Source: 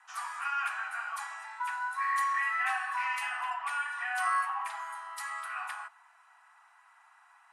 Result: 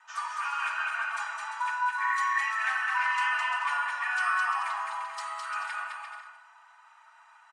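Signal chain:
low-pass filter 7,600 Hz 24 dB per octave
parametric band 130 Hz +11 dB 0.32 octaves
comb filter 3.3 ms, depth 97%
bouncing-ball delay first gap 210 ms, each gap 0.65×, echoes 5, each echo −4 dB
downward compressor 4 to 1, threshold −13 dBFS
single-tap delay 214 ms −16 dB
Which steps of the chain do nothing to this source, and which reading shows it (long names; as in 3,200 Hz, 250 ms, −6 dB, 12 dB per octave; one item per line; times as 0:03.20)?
parametric band 130 Hz: nothing at its input below 640 Hz
downward compressor, threshold −13 dBFS: peak of its input −15.5 dBFS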